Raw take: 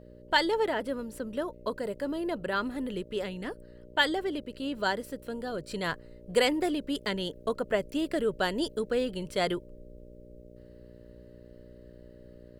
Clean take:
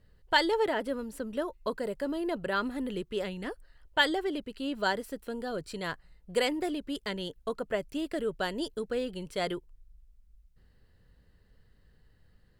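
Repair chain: de-hum 60.2 Hz, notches 9; notch 600 Hz, Q 30; gain correction -3.5 dB, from 5.71

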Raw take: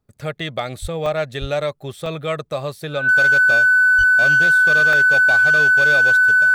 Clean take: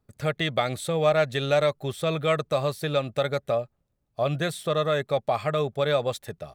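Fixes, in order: clip repair -10.5 dBFS; notch 1500 Hz, Q 30; 0.81–0.93 HPF 140 Hz 24 dB/oct; 1.4–1.52 HPF 140 Hz 24 dB/oct; 3.97–4.09 HPF 140 Hz 24 dB/oct; interpolate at 1.06/2.06/4.93, 2.2 ms

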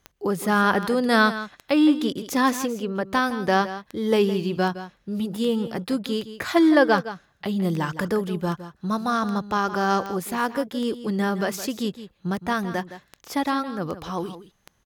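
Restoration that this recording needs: de-click; inverse comb 0.164 s -13 dB

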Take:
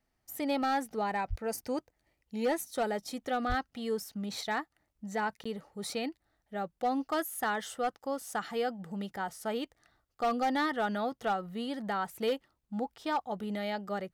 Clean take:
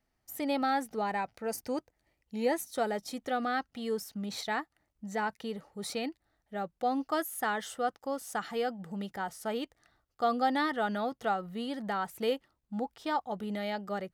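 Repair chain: clip repair -24 dBFS; de-plosive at 1.29/3.48; interpolate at 5.44, 15 ms

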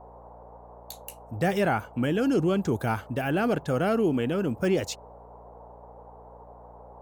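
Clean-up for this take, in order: de-hum 59.2 Hz, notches 5; noise print and reduce 24 dB

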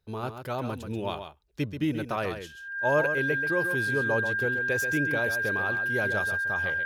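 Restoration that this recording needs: notch 1600 Hz, Q 30; inverse comb 0.133 s -8.5 dB

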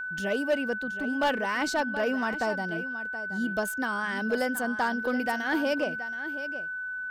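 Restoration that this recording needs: clip repair -19.5 dBFS; notch 1500 Hz, Q 30; inverse comb 0.725 s -12.5 dB

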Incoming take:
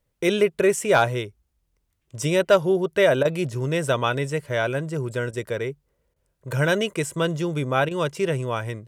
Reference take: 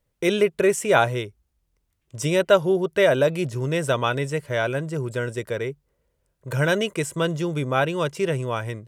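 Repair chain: clip repair -7.5 dBFS; interpolate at 3.23/5.31/6.14/7.89, 20 ms

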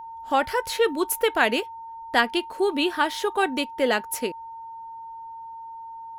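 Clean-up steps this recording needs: notch 910 Hz, Q 30

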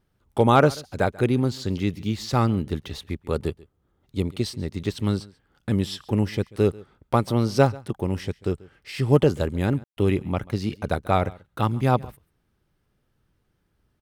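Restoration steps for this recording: clip repair -6.5 dBFS; room tone fill 9.84–9.97; inverse comb 0.138 s -22.5 dB

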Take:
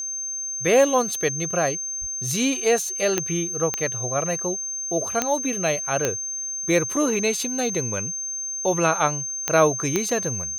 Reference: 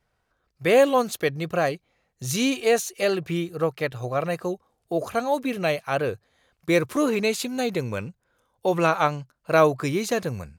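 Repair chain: de-click; notch 6300 Hz, Q 30; de-plosive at 2

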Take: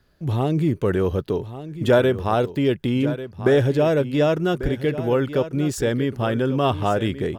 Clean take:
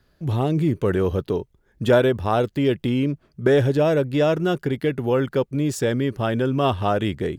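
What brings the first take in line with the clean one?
de-plosive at 4.62; inverse comb 1.143 s -13 dB

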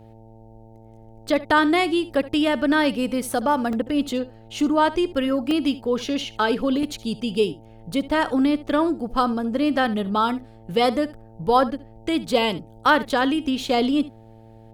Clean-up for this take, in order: de-hum 111.9 Hz, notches 8; interpolate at 3.73/5.51/6.83, 1.5 ms; inverse comb 71 ms -17.5 dB

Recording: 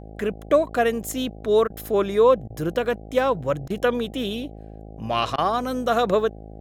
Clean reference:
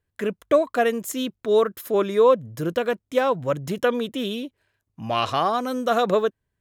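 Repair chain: de-hum 53.4 Hz, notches 15; interpolate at 1.68/2.48/3.68/5.36, 20 ms

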